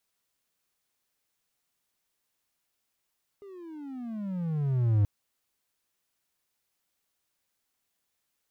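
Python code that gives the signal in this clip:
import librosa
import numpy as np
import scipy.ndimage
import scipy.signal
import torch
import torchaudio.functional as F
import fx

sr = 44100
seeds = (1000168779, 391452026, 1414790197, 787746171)

y = fx.riser_tone(sr, length_s=1.63, level_db=-17, wave='triangle', hz=410.0, rise_st=-24.5, swell_db=25)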